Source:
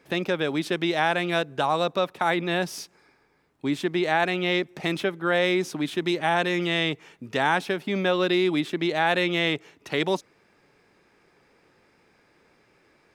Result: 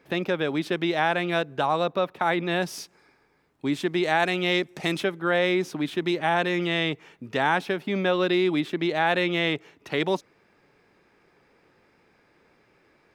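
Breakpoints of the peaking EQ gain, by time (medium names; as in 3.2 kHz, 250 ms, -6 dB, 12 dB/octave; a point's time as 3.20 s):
peaking EQ 8.5 kHz 1.7 oct
1.72 s -6.5 dB
1.96 s -13 dB
2.67 s -1 dB
3.68 s -1 dB
4.29 s +5 dB
4.90 s +5 dB
5.36 s -5.5 dB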